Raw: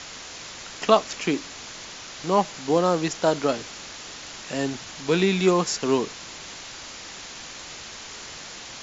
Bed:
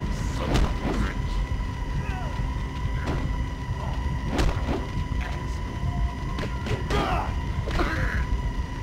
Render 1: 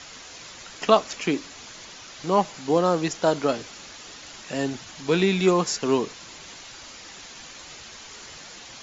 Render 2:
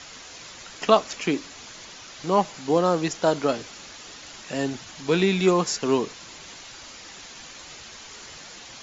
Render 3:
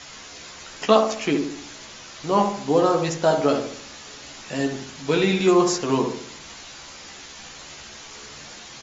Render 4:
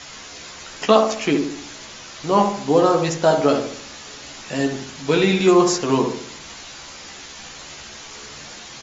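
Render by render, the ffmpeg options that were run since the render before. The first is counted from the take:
-af "afftdn=nr=6:nf=-40"
-af anull
-filter_complex "[0:a]asplit=2[a][b];[b]adelay=14,volume=-4.5dB[c];[a][c]amix=inputs=2:normalize=0,asplit=2[d][e];[e]adelay=68,lowpass=f=1.3k:p=1,volume=-4.5dB,asplit=2[f][g];[g]adelay=68,lowpass=f=1.3k:p=1,volume=0.51,asplit=2[h][i];[i]adelay=68,lowpass=f=1.3k:p=1,volume=0.51,asplit=2[j][k];[k]adelay=68,lowpass=f=1.3k:p=1,volume=0.51,asplit=2[l][m];[m]adelay=68,lowpass=f=1.3k:p=1,volume=0.51,asplit=2[n][o];[o]adelay=68,lowpass=f=1.3k:p=1,volume=0.51,asplit=2[p][q];[q]adelay=68,lowpass=f=1.3k:p=1,volume=0.51[r];[d][f][h][j][l][n][p][r]amix=inputs=8:normalize=0"
-af "volume=3dB,alimiter=limit=-1dB:level=0:latency=1"

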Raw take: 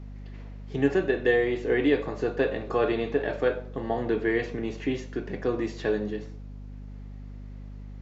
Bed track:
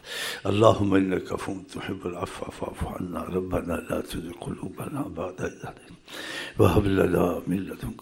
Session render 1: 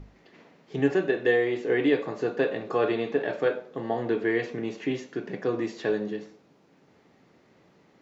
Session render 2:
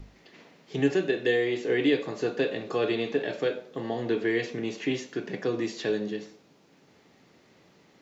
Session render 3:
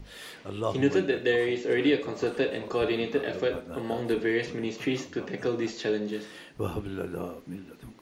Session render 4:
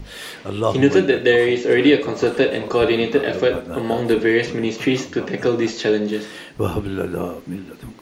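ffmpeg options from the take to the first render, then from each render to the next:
-af "bandreject=f=50:t=h:w=6,bandreject=f=100:t=h:w=6,bandreject=f=150:t=h:w=6,bandreject=f=200:t=h:w=6,bandreject=f=250:t=h:w=6"
-filter_complex "[0:a]acrossover=split=530|2500[a][b][c];[b]alimiter=level_in=4.5dB:limit=-24dB:level=0:latency=1:release=425,volume=-4.5dB[d];[c]acontrast=77[e];[a][d][e]amix=inputs=3:normalize=0"
-filter_complex "[1:a]volume=-12.5dB[a];[0:a][a]amix=inputs=2:normalize=0"
-af "volume=10dB,alimiter=limit=-3dB:level=0:latency=1"

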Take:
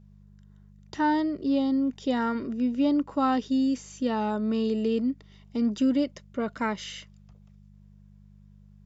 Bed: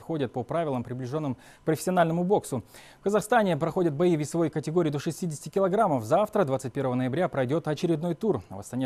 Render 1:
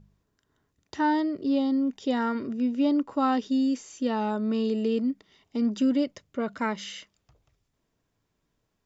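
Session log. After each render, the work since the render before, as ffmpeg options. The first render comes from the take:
-af "bandreject=f=50:t=h:w=4,bandreject=f=100:t=h:w=4,bandreject=f=150:t=h:w=4,bandreject=f=200:t=h:w=4"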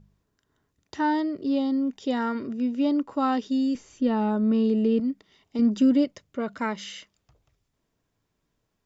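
-filter_complex "[0:a]asettb=1/sr,asplit=3[a][b][c];[a]atrim=end=3.754[d];[b]atrim=start=3.75:end=5,asetpts=PTS-STARTPTS,afade=t=in:d=0.004:c=qsin,afade=t=out:st=1.246:d=0.004:c=qsin,aemphasis=mode=reproduction:type=bsi[e];[c]atrim=start=4.996[f];[d][e]acrossfade=d=0.004:c1=hsin:c2=qsin[g];[g][f]acrossfade=d=0.004:c1=qsin:c2=hsin,asettb=1/sr,asplit=3[h][i][j];[h]atrim=end=5.594[k];[i]atrim=start=5.59:end=6.05,asetpts=PTS-STARTPTS,afade=t=in:d=0.004:c=qsin,afade=t=out:st=0.456:d=0.004:c=qsin,lowshelf=f=400:g=6[l];[j]atrim=start=6.046[m];[k][l]acrossfade=d=0.004:c1=hsin:c2=qsin[n];[n][m]acrossfade=d=0.004:c1=qsin:c2=hsin"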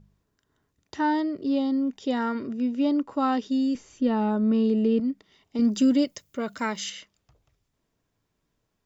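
-filter_complex "[0:a]asettb=1/sr,asplit=3[a][b][c];[a]atrim=end=5.604[d];[b]atrim=start=5.6:end=6.9,asetpts=PTS-STARTPTS,afade=t=in:d=0.004:c=qsin,afade=t=out:st=1.296:d=0.004:c=qsin,aemphasis=mode=production:type=75fm[e];[c]atrim=start=6.896[f];[d][e]acrossfade=d=0.004:c1=hsin:c2=qsin[g];[g][f]acrossfade=d=0.004:c1=qsin:c2=hsin"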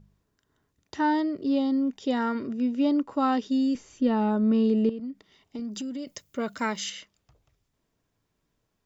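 -filter_complex "[0:a]asettb=1/sr,asplit=3[a][b][c];[a]atrim=end=4.894[d];[b]atrim=start=4.89:end=6.07,asetpts=PTS-STARTPTS,afade=t=in:d=0.004:c=qsin,afade=t=out:st=1.176:d=0.004:c=qsin,acompressor=threshold=-32dB:ratio=6:attack=3.2:release=140:knee=1:detection=peak[e];[c]atrim=start=6.066[f];[d][e]acrossfade=d=0.004:c1=hsin:c2=qsin[g];[g][f]acrossfade=d=0.004:c1=qsin:c2=hsin"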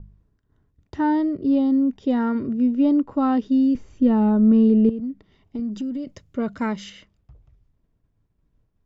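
-af "aemphasis=mode=reproduction:type=riaa,agate=range=-33dB:threshold=-59dB:ratio=3:detection=peak"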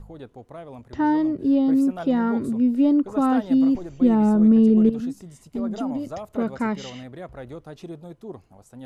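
-filter_complex "[1:a]volume=-11.5dB[a];[0:a][a]amix=inputs=2:normalize=0"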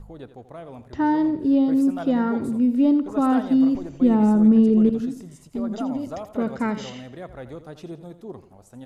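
-af "aecho=1:1:84|168|252|336:0.224|0.0918|0.0376|0.0154"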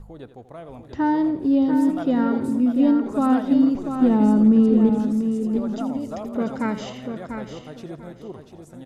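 -af "aecho=1:1:692|1384|2076:0.422|0.0843|0.0169"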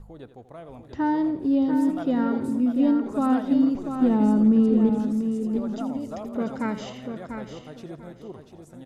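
-af "volume=-3dB"

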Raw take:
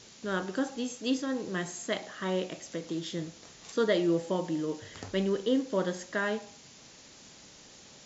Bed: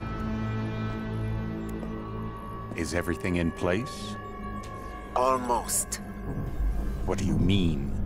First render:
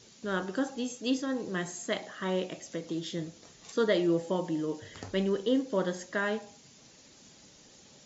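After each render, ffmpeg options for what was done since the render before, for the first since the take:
-af "afftdn=nr=6:nf=-53"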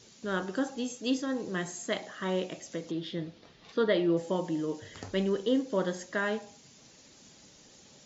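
-filter_complex "[0:a]asettb=1/sr,asplit=3[a][b][c];[a]atrim=end=2.914[d];[b]atrim=start=2.91:end=4.17,asetpts=PTS-STARTPTS,afade=t=in:d=0.004:c=qsin,afade=t=out:st=1.256:d=0.004:c=qsin,lowpass=f=4.3k:w=0.5412,lowpass=f=4.3k:w=1.3066[e];[c]atrim=start=4.166[f];[d][e]acrossfade=d=0.004:c1=hsin:c2=qsin[g];[g][f]acrossfade=d=0.004:c1=qsin:c2=hsin"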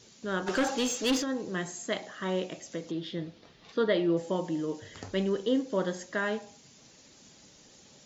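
-filter_complex "[0:a]asplit=3[a][b][c];[a]afade=t=out:st=0.46:d=0.02[d];[b]asplit=2[e][f];[f]highpass=f=720:p=1,volume=22dB,asoftclip=type=tanh:threshold=-19dB[g];[e][g]amix=inputs=2:normalize=0,lowpass=f=5.3k:p=1,volume=-6dB,afade=t=in:st=0.46:d=0.02,afade=t=out:st=1.22:d=0.02[h];[c]afade=t=in:st=1.22:d=0.02[i];[d][h][i]amix=inputs=3:normalize=0"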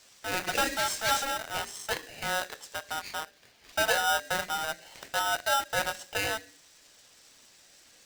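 -filter_complex "[0:a]acrossover=split=460[a][b];[a]aeval=exprs='val(0)*gte(abs(val(0)),0.0178)':c=same[c];[c][b]amix=inputs=2:normalize=0,aeval=exprs='val(0)*sgn(sin(2*PI*1100*n/s))':c=same"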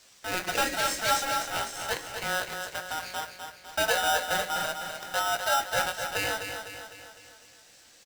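-filter_complex "[0:a]asplit=2[a][b];[b]adelay=17,volume=-10.5dB[c];[a][c]amix=inputs=2:normalize=0,aecho=1:1:252|504|756|1008|1260|1512:0.447|0.232|0.121|0.0628|0.0327|0.017"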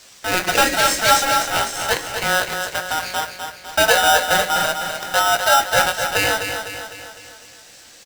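-af "volume=11dB"

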